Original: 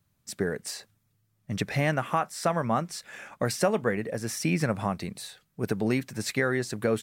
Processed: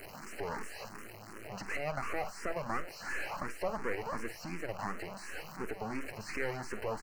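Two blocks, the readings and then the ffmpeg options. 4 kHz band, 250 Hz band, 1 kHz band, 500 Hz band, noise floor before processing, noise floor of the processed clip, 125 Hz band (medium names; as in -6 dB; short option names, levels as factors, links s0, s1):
-11.5 dB, -14.0 dB, -7.5 dB, -10.0 dB, -73 dBFS, -49 dBFS, -16.0 dB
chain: -filter_complex "[0:a]aeval=exprs='val(0)+0.5*0.0501*sgn(val(0))':c=same,alimiter=limit=0.126:level=0:latency=1:release=161,highpass=390,highshelf=f=8400:g=-7,acrossover=split=3300[s0][s1];[s1]acompressor=threshold=0.00355:ratio=4:attack=1:release=60[s2];[s0][s2]amix=inputs=2:normalize=0,equalizer=f=3500:t=o:w=0.82:g=-4.5,aeval=exprs='max(val(0),0)':c=same,asuperstop=centerf=3500:order=8:qfactor=3.4,asplit=2[s3][s4];[s4]adelay=47,volume=0.224[s5];[s3][s5]amix=inputs=2:normalize=0,asplit=2[s6][s7];[s7]afreqshift=2.8[s8];[s6][s8]amix=inputs=2:normalize=1,volume=1.12"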